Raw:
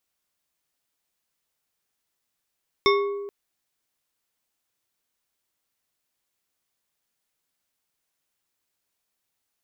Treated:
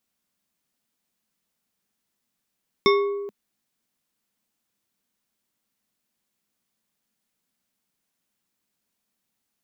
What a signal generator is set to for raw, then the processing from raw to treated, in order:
glass hit bar, length 0.43 s, lowest mode 403 Hz, decay 1.52 s, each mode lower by 2 dB, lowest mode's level -16.5 dB
peaking EQ 210 Hz +13 dB 0.78 oct

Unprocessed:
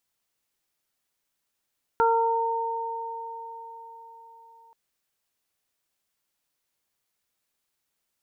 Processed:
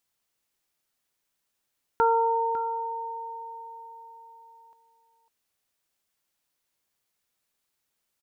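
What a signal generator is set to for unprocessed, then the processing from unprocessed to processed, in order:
additive tone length 2.73 s, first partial 458 Hz, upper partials 3/-1 dB, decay 3.82 s, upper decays 4.94/0.61 s, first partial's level -22 dB
delay 551 ms -13.5 dB

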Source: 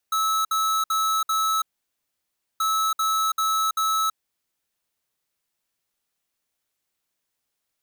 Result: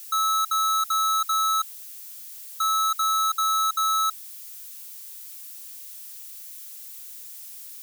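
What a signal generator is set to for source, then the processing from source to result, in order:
beep pattern square 1.3 kHz, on 0.33 s, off 0.06 s, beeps 4, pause 0.98 s, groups 2, -22.5 dBFS
zero-crossing glitches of -37.5 dBFS

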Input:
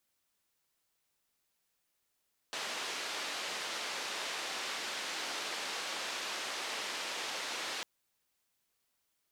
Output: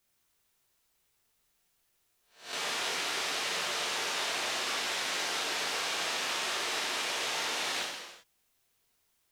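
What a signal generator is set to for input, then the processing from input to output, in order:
noise band 360–4500 Hz, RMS -39 dBFS 5.30 s
reverse spectral sustain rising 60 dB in 0.41 s; bass shelf 65 Hz +10.5 dB; gated-style reverb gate 420 ms falling, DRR -2 dB

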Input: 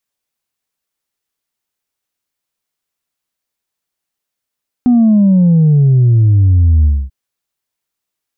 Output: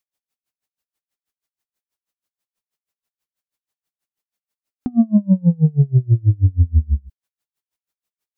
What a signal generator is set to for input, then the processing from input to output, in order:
sub drop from 250 Hz, over 2.24 s, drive 1 dB, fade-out 0.25 s, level -6 dB
logarithmic tremolo 6.2 Hz, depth 33 dB

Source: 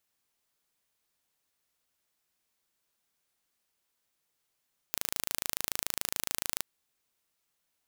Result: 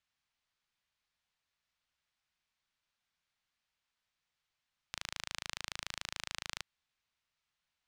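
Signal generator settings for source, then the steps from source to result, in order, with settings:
pulse train 27 per s, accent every 0, -3.5 dBFS 1.70 s
low-pass 4.2 kHz 12 dB/octave; peaking EQ 380 Hz -12.5 dB 1.8 oct

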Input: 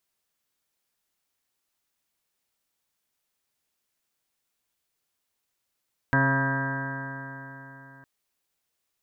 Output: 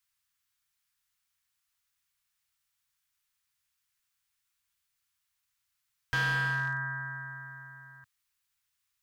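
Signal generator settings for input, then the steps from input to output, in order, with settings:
stretched partials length 1.91 s, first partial 134 Hz, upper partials -2.5/-15.5/-10.5/-9/-18.5/-3.5/-15.5/-11.5/-18.5/1/-13.5/-14 dB, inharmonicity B 0.0014, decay 3.77 s, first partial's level -23 dB
Chebyshev band-stop 110–1300 Hz, order 2; hard clipper -26 dBFS

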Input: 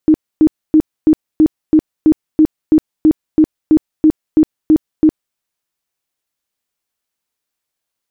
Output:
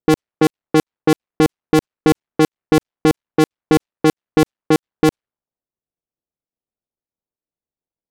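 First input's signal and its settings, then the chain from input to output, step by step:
tone bursts 311 Hz, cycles 19, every 0.33 s, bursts 16, -4.5 dBFS
cycle switcher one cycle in 2, muted; level-controlled noise filter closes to 570 Hz, open at -8.5 dBFS

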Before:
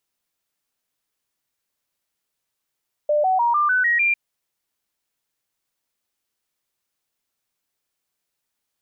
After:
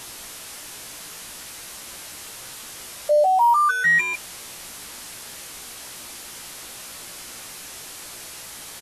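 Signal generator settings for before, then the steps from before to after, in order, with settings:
stepped sine 596 Hz up, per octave 3, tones 7, 0.15 s, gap 0.00 s -15.5 dBFS
one-bit delta coder 64 kbps, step -32 dBFS; doubling 17 ms -6 dB; Vorbis 64 kbps 32 kHz

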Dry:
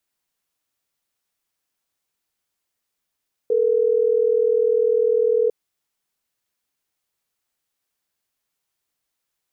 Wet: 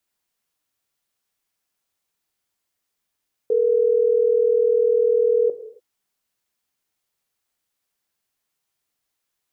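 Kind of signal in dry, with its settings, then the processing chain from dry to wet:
call progress tone ringback tone, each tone -18 dBFS
gated-style reverb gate 310 ms falling, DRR 8.5 dB

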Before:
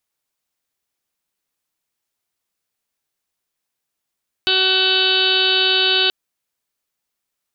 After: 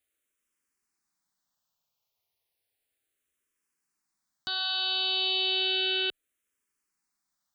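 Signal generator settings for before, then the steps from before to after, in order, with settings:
steady additive tone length 1.63 s, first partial 377 Hz, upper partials -6.5/-11/0/-16.5/-14/0.5/5.5/-3/4/-4.5/-1 dB, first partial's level -23.5 dB
peak limiter -16 dBFS; barber-pole phaser -0.33 Hz

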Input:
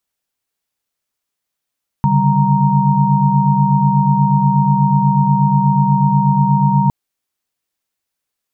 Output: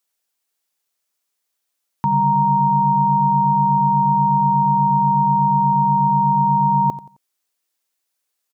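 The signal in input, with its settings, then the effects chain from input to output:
chord C#3/D3/G3/A#5 sine, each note -15.5 dBFS 4.86 s
high-pass 110 Hz; tone controls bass -9 dB, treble +4 dB; feedback delay 88 ms, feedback 33%, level -16 dB

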